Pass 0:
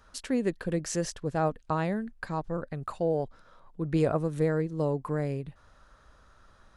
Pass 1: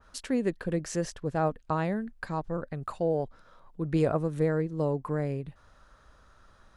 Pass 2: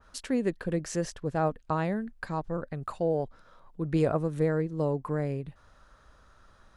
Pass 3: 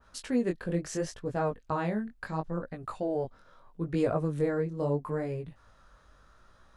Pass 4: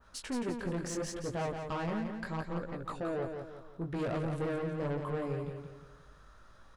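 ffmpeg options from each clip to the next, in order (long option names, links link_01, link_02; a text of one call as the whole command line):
ffmpeg -i in.wav -af "adynamicequalizer=threshold=0.00355:dfrequency=2900:dqfactor=0.7:tfrequency=2900:tqfactor=0.7:attack=5:release=100:ratio=0.375:range=2.5:mode=cutabove:tftype=highshelf" out.wav
ffmpeg -i in.wav -af anull out.wav
ffmpeg -i in.wav -af "flanger=delay=16.5:depth=7:speed=0.75,volume=1.5dB" out.wav
ffmpeg -i in.wav -filter_complex "[0:a]asoftclip=type=tanh:threshold=-31.5dB,asplit=2[link_01][link_02];[link_02]aecho=0:1:173|346|519|692|865:0.501|0.205|0.0842|0.0345|0.0142[link_03];[link_01][link_03]amix=inputs=2:normalize=0" out.wav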